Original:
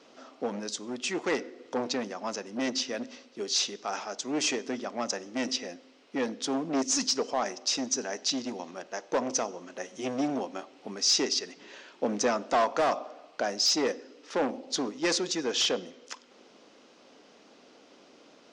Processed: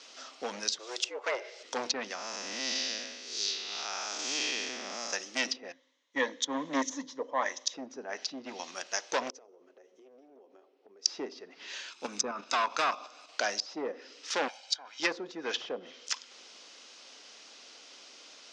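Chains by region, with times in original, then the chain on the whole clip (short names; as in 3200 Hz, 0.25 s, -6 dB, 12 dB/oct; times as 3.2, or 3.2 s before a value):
0.79–1.63 tone controls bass -4 dB, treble +9 dB + frequency shift +120 Hz
2.15–5.13 time blur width 0.278 s + high shelf 9900 Hz -10 dB
5.72–7.74 ripple EQ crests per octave 1.1, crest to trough 11 dB + three-band expander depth 70%
9.3–11.06 band-pass 410 Hz, Q 3.9 + compressor 12:1, threshold -47 dBFS
11.9–13.29 high shelf 10000 Hz +9 dB + comb 0.8 ms, depth 47% + level quantiser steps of 9 dB
14.48–15 HPF 1200 Hz + comb 1.3 ms, depth 74%
whole clip: weighting filter ITU-R 468; treble ducked by the level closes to 730 Hz, closed at -18.5 dBFS; low shelf 130 Hz +8.5 dB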